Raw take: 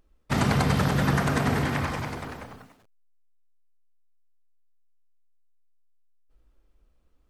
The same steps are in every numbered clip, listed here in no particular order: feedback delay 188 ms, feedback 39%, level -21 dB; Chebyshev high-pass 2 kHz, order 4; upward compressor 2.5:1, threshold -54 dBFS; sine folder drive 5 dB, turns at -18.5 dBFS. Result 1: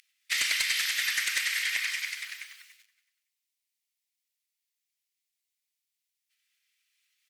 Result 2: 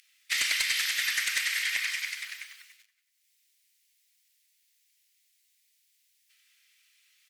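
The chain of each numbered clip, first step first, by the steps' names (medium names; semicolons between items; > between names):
feedback delay > upward compressor > Chebyshev high-pass > sine folder; Chebyshev high-pass > sine folder > upward compressor > feedback delay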